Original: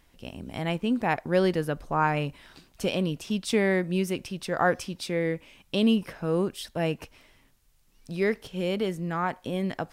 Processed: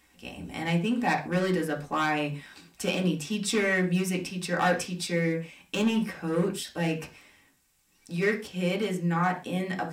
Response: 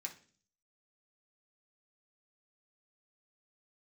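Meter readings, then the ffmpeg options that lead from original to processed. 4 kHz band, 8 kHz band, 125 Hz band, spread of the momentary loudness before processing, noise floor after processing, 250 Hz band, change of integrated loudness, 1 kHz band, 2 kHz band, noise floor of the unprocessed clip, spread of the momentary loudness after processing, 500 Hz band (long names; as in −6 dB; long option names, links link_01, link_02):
+0.5 dB, +5.0 dB, +1.0 dB, 9 LU, −65 dBFS, −0.5 dB, −0.5 dB, −0.5 dB, +2.5 dB, −62 dBFS, 9 LU, −2.5 dB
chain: -filter_complex "[0:a]volume=19dB,asoftclip=hard,volume=-19dB[link_01];[1:a]atrim=start_sample=2205,atrim=end_sample=6174[link_02];[link_01][link_02]afir=irnorm=-1:irlink=0,volume=5.5dB"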